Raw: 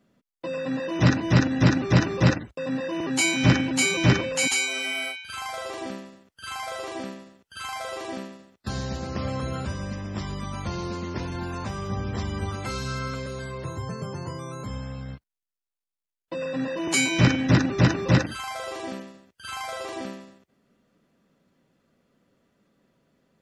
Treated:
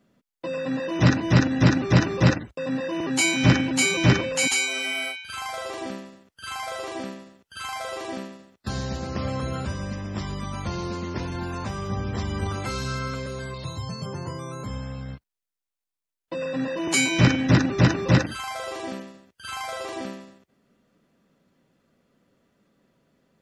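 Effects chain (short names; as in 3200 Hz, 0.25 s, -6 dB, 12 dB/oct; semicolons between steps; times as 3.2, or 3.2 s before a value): 12.3–12.97 transient shaper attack +2 dB, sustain +6 dB; 13.54–14.06 fifteen-band EQ 400 Hz -10 dB, 1600 Hz -8 dB, 4000 Hz +12 dB; gain +1 dB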